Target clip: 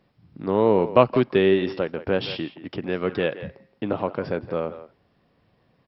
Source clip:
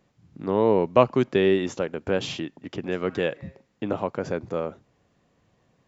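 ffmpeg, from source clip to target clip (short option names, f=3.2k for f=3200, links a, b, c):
-filter_complex "[0:a]asplit=2[a][b];[b]adelay=170,highpass=300,lowpass=3.4k,asoftclip=type=hard:threshold=-11dB,volume=-13dB[c];[a][c]amix=inputs=2:normalize=0,volume=1.5dB" -ar 44100 -c:a mp2 -b:a 48k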